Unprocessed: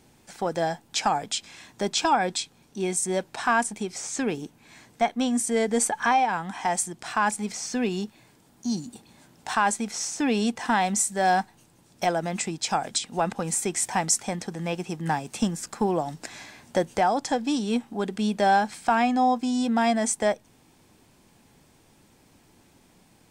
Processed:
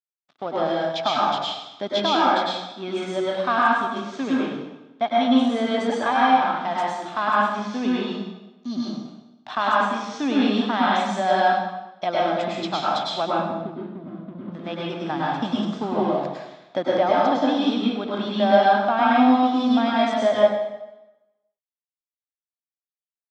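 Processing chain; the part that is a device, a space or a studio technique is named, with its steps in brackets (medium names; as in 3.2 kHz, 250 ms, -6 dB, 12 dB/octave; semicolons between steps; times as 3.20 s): 13.31–14.52 s: inverse Chebyshev low-pass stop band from 1.2 kHz, stop band 60 dB; blown loudspeaker (crossover distortion -40 dBFS; cabinet simulation 130–4600 Hz, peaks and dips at 130 Hz +7 dB, 270 Hz +9 dB, 630 Hz +10 dB, 1.2 kHz +9 dB, 3.5 kHz +10 dB); plate-style reverb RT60 1 s, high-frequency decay 0.85×, pre-delay 90 ms, DRR -6 dB; trim -6 dB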